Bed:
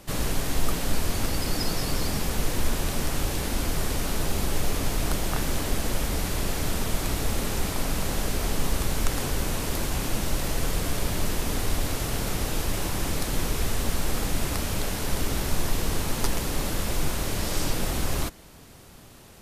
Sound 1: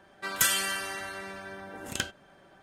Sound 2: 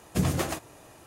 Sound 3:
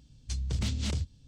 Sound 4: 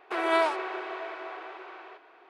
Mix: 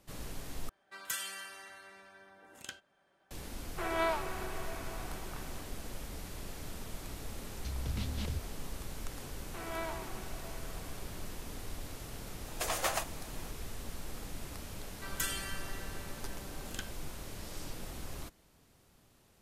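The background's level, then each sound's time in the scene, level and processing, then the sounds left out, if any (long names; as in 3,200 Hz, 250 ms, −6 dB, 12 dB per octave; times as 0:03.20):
bed −16.5 dB
0:00.69: overwrite with 1 −13 dB + low-shelf EQ 350 Hz −8.5 dB
0:03.67: mix in 4 −7.5 dB
0:07.35: mix in 3 −6 dB + low-pass filter 4,500 Hz
0:09.43: mix in 4 −15.5 dB + slap from a distant wall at 22 metres, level −7 dB
0:12.45: mix in 2 + high-pass filter 560 Hz 24 dB per octave
0:14.79: mix in 1 −11.5 dB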